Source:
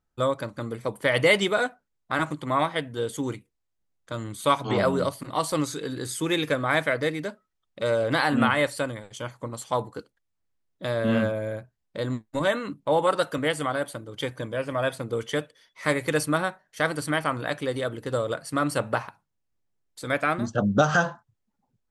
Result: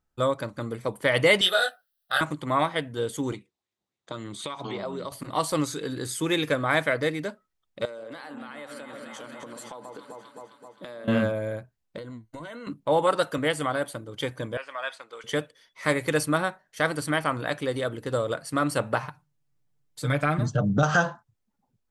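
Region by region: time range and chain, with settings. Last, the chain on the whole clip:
1.41–2.21 s: tilt EQ +4.5 dB/octave + static phaser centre 1.5 kHz, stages 8 + doubling 22 ms -2 dB
3.32–5.12 s: compression 12:1, threshold -32 dBFS + cabinet simulation 110–8600 Hz, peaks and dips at 200 Hz +3 dB, 370 Hz +6 dB, 1.5 kHz -4 dB, 3.7 kHz +7 dB + sweeping bell 3.9 Hz 730–2400 Hz +8 dB
7.85–11.08 s: high-pass 180 Hz 24 dB/octave + echo whose repeats swap between lows and highs 131 ms, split 1.3 kHz, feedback 76%, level -9 dB + compression 12:1, threshold -36 dBFS
11.98–12.67 s: rippled EQ curve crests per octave 1.9, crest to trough 9 dB + compression 10:1, threshold -36 dBFS
14.57–15.24 s: high-pass 1.1 kHz + distance through air 85 m
19.02–20.83 s: peaking EQ 140 Hz +12 dB 0.53 oct + comb 6.7 ms, depth 76% + compression 3:1, threshold -20 dBFS
whole clip: none

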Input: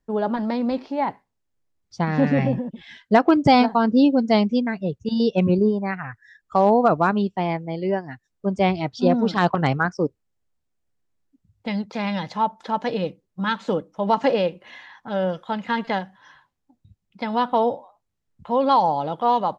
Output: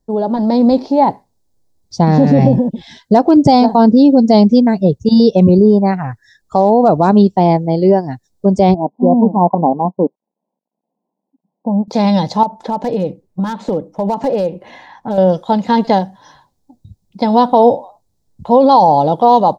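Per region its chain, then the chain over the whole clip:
8.74–11.88 s: companding laws mixed up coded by A + brick-wall FIR band-pass 170–1100 Hz + peaking EQ 390 Hz -7 dB 1 oct
12.43–15.18 s: resonant high shelf 3.2 kHz -7 dB, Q 1.5 + compression 3:1, threshold -28 dBFS + hard clipper -23 dBFS
whole clip: high-order bell 1.9 kHz -13.5 dB; peak limiter -15.5 dBFS; level rider gain up to 6.5 dB; trim +7.5 dB

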